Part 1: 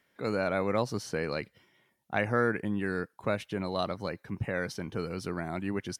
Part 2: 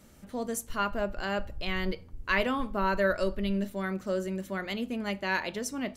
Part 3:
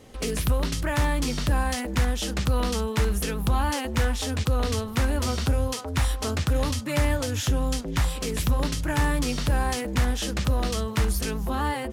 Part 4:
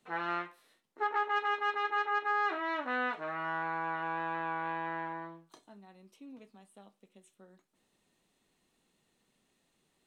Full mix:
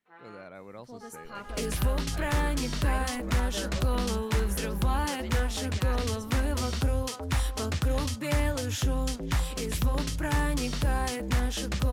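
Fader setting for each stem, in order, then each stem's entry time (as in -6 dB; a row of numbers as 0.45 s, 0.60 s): -16.5 dB, -12.5 dB, -3.5 dB, -17.0 dB; 0.00 s, 0.55 s, 1.35 s, 0.00 s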